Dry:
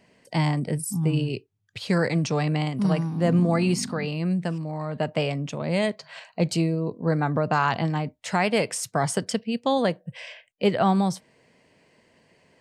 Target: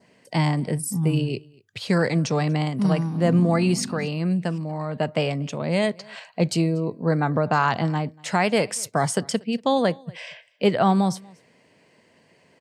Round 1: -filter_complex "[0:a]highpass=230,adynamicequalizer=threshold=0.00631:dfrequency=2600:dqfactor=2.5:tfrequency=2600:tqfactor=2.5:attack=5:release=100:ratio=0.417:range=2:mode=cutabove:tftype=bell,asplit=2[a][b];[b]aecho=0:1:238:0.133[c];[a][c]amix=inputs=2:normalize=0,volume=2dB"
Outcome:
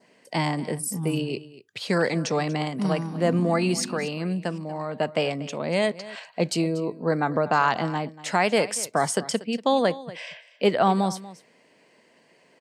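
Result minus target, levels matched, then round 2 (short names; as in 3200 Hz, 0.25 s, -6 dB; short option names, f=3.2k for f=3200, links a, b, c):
echo-to-direct +8.5 dB; 125 Hz band -4.5 dB
-filter_complex "[0:a]highpass=89,adynamicequalizer=threshold=0.00631:dfrequency=2600:dqfactor=2.5:tfrequency=2600:tqfactor=2.5:attack=5:release=100:ratio=0.417:range=2:mode=cutabove:tftype=bell,asplit=2[a][b];[b]aecho=0:1:238:0.0501[c];[a][c]amix=inputs=2:normalize=0,volume=2dB"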